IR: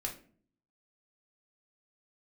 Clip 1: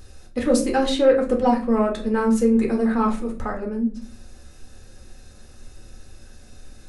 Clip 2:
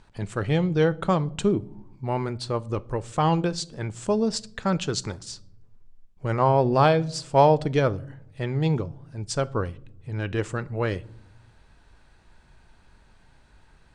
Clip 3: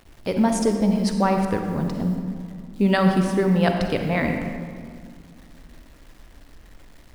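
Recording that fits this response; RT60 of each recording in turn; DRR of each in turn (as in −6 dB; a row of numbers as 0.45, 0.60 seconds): 1; 0.50 s, non-exponential decay, 2.1 s; 0.0, 16.5, 4.0 decibels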